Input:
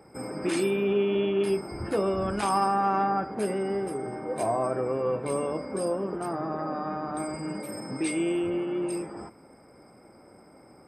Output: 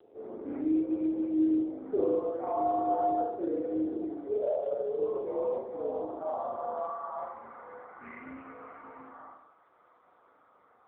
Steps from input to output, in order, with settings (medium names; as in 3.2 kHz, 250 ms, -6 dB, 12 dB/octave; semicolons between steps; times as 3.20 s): mistuned SSB -80 Hz 350–2200 Hz; 4.38–4.98 s: static phaser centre 1.5 kHz, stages 8; reverberation RT60 0.65 s, pre-delay 38 ms, DRR -2 dB; band-pass sweep 440 Hz -> 1.2 kHz, 4.55–8.08 s; AMR-NB 6.7 kbps 8 kHz